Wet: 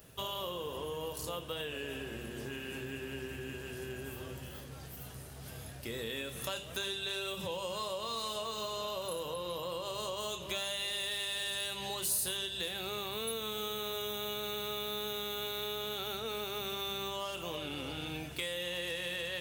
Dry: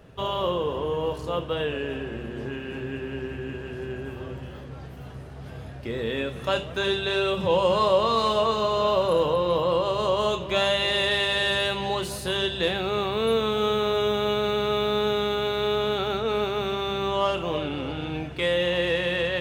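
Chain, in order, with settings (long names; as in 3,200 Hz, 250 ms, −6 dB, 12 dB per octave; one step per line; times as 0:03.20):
first-order pre-emphasis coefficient 0.8
downward compressor, threshold −41 dBFS, peak gain reduction 11.5 dB
high-shelf EQ 7,600 Hz +11.5 dB
level +5 dB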